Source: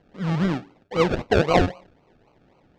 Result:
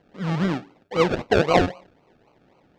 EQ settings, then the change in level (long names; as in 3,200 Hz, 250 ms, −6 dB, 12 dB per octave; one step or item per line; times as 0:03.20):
low-shelf EQ 97 Hz −8.5 dB
+1.0 dB